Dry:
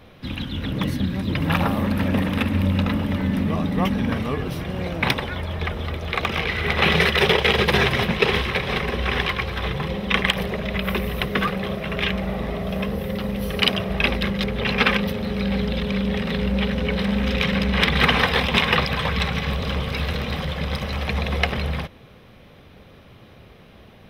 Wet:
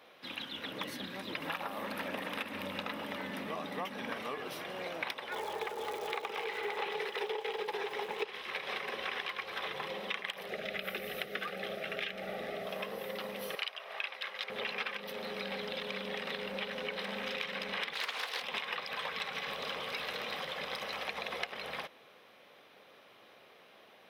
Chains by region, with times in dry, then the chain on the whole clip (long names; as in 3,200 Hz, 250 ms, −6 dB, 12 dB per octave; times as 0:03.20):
0:05.31–0:08.24: hollow resonant body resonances 430/840 Hz, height 16 dB + surface crackle 340 per second −28 dBFS
0:10.49–0:12.66: Butterworth band-reject 1,000 Hz, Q 2.8 + low-shelf EQ 170 Hz +6.5 dB
0:13.55–0:14.50: high-pass filter 800 Hz + high-shelf EQ 7,200 Hz −8.5 dB
0:17.93–0:18.42: bass and treble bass −13 dB, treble +11 dB + highs frequency-modulated by the lows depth 0.36 ms
whole clip: high-pass filter 510 Hz 12 dB per octave; downward compressor 10 to 1, threshold −28 dBFS; level −6 dB